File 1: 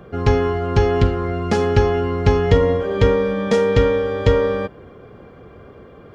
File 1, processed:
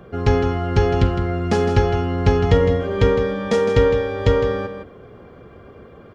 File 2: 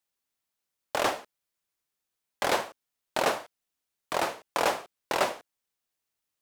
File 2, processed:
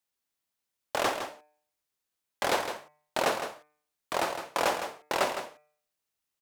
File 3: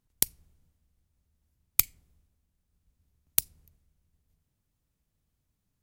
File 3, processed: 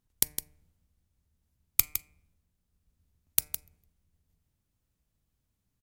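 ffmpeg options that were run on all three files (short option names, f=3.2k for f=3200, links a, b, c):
-filter_complex "[0:a]bandreject=f=150.3:t=h:w=4,bandreject=f=300.6:t=h:w=4,bandreject=f=450.9:t=h:w=4,bandreject=f=601.2:t=h:w=4,bandreject=f=751.5:t=h:w=4,bandreject=f=901.8:t=h:w=4,bandreject=f=1.0521k:t=h:w=4,bandreject=f=1.2024k:t=h:w=4,bandreject=f=1.3527k:t=h:w=4,bandreject=f=1.503k:t=h:w=4,bandreject=f=1.6533k:t=h:w=4,bandreject=f=1.8036k:t=h:w=4,bandreject=f=1.9539k:t=h:w=4,bandreject=f=2.1042k:t=h:w=4,bandreject=f=2.2545k:t=h:w=4,bandreject=f=2.4048k:t=h:w=4,bandreject=f=2.5551k:t=h:w=4,asplit=2[a][b];[b]aecho=0:1:160:0.355[c];[a][c]amix=inputs=2:normalize=0,volume=-1dB"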